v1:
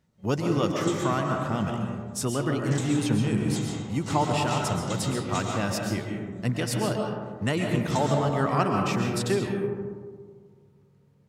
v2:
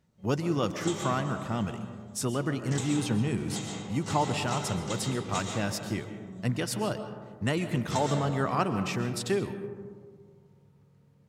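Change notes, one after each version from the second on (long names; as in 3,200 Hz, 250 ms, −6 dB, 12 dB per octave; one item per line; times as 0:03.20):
speech: send −9.5 dB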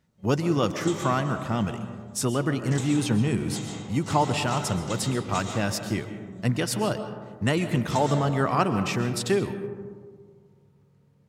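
speech +4.5 dB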